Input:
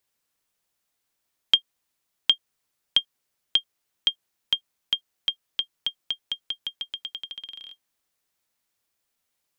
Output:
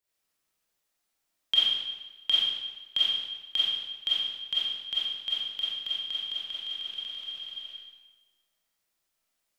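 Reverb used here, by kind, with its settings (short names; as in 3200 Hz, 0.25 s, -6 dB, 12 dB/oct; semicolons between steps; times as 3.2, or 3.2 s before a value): digital reverb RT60 1.2 s, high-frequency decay 0.95×, pre-delay 5 ms, DRR -9 dB; gain -10 dB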